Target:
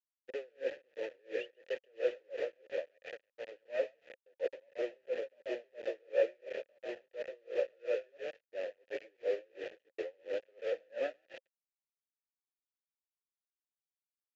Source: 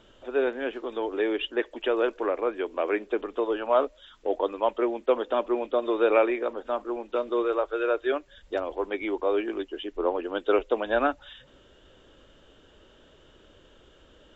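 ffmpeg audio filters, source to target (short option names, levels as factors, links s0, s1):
-filter_complex "[0:a]asettb=1/sr,asplit=3[s0][s1][s2];[s0]atrim=end=0.684[s3];[s1]atrim=start=0.68:end=1.2,asetpts=PTS-STARTPTS,afade=t=in:d=0.004:c=qsin,afade=t=out:st=0.516:d=0.004:c=qsin,aeval=exprs='sgn(val(0))*max(abs(val(0))-0.00596,0)':c=same[s4];[s2]atrim=start=1.196[s5];[s3][s4]acrossfade=d=0.004:c1=hsin:c2=qsin[s6];[s6][s5]acrossfade=d=0.004:c1=qsin:c2=hsin,aeval=exprs='val(0)+0.00501*(sin(2*PI*50*n/s)+sin(2*PI*2*50*n/s)/2+sin(2*PI*3*50*n/s)/3+sin(2*PI*4*50*n/s)/4+sin(2*PI*5*50*n/s)/5)':c=same,asoftclip=type=hard:threshold=0.0794,asettb=1/sr,asplit=3[s7][s8][s9];[s7]atrim=end=2.844[s10];[s8]atrim=start=2.84:end=3.52,asetpts=PTS-STARTPTS,afade=t=in:d=0.004:c=qsin,afade=t=out:st=0.676:d=0.004:c=qsin,equalizer=f=340:t=o:w=0.96:g=-14.5[s11];[s9]atrim=start=3.516[s12];[s10][s11]acrossfade=d=0.004:c1=hsin:c2=qsin[s13];[s13][s12]acrossfade=d=0.004:c1=qsin:c2=hsin,asplit=8[s14][s15][s16][s17][s18][s19][s20][s21];[s15]adelay=134,afreqshift=34,volume=0.562[s22];[s16]adelay=268,afreqshift=68,volume=0.292[s23];[s17]adelay=402,afreqshift=102,volume=0.151[s24];[s18]adelay=536,afreqshift=136,volume=0.0794[s25];[s19]adelay=670,afreqshift=170,volume=0.0412[s26];[s20]adelay=804,afreqshift=204,volume=0.0214[s27];[s21]adelay=938,afreqshift=238,volume=0.0111[s28];[s14][s22][s23][s24][s25][s26][s27][s28]amix=inputs=8:normalize=0,acrusher=bits=4:mix=0:aa=0.000001,agate=range=0.282:threshold=0.0141:ratio=16:detection=peak,asplit=3[s29][s30][s31];[s29]bandpass=f=530:t=q:w=8,volume=1[s32];[s30]bandpass=f=1840:t=q:w=8,volume=0.501[s33];[s31]bandpass=f=2480:t=q:w=8,volume=0.355[s34];[s32][s33][s34]amix=inputs=3:normalize=0,aresample=16000,aresample=44100,aeval=exprs='val(0)*pow(10,-35*(0.5-0.5*cos(2*PI*2.9*n/s))/20)':c=same,volume=1.19"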